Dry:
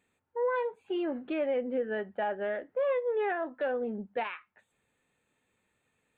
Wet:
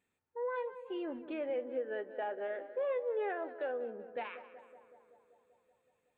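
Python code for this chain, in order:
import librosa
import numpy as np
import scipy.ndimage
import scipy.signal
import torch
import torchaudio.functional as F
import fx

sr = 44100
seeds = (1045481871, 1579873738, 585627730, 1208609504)

y = fx.low_shelf_res(x, sr, hz=250.0, db=-10.5, q=1.5, at=(1.5, 4.1))
y = fx.echo_tape(y, sr, ms=190, feedback_pct=77, wet_db=-11.5, lp_hz=1900.0, drive_db=23.0, wow_cents=39)
y = F.gain(torch.from_numpy(y), -7.5).numpy()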